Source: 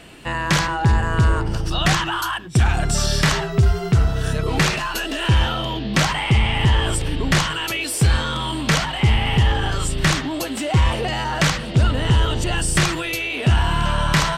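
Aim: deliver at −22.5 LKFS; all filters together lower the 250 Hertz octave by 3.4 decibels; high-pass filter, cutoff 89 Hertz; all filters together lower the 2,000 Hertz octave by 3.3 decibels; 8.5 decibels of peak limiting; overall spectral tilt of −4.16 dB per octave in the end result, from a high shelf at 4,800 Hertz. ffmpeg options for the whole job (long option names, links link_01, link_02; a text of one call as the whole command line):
ffmpeg -i in.wav -af "highpass=89,equalizer=frequency=250:width_type=o:gain=-5.5,equalizer=frequency=2000:width_type=o:gain=-5.5,highshelf=frequency=4800:gain=7.5,volume=1dB,alimiter=limit=-12dB:level=0:latency=1" out.wav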